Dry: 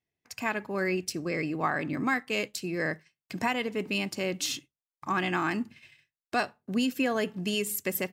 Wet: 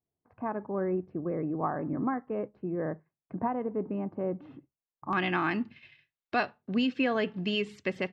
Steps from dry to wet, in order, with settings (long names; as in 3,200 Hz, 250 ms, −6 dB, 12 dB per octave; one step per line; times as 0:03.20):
low-pass filter 1,100 Hz 24 dB per octave, from 0:05.13 4,000 Hz